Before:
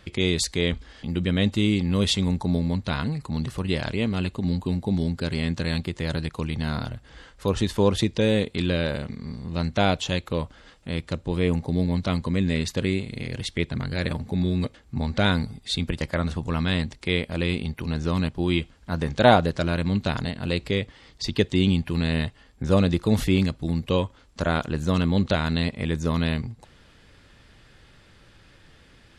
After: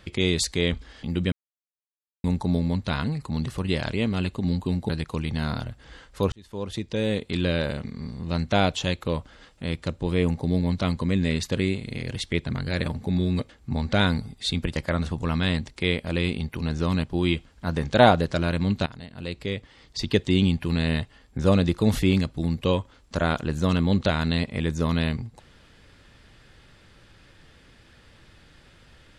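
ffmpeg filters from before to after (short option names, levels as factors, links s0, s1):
-filter_complex "[0:a]asplit=6[s0][s1][s2][s3][s4][s5];[s0]atrim=end=1.32,asetpts=PTS-STARTPTS,afade=t=out:st=1.316:d=0.004:c=hsin[s6];[s1]atrim=start=1.32:end=2.24,asetpts=PTS-STARTPTS,volume=0[s7];[s2]atrim=start=2.24:end=4.892,asetpts=PTS-STARTPTS,afade=t=in:d=0.004:c=hsin[s8];[s3]atrim=start=6.138:end=7.57,asetpts=PTS-STARTPTS,afade=t=out:st=1.428:d=0.004:c=hsin[s9];[s4]atrim=start=7.57:end=20.11,asetpts=PTS-STARTPTS,afade=t=in:d=1.18,afade=t=out:st=12.536:d=0.004:c=hsin:silence=0.141254[s10];[s5]atrim=start=20.11,asetpts=PTS-STARTPTS,afade=t=in:d=1.25:silence=0.141254[s11];[s6][s7][s8]concat=n=3:v=0:a=1[s12];[s9][s10][s11]concat=n=3:v=0:a=1[s13];[s12][s13]acrossfade=d=0.004:c1=hsin:c2=hsin"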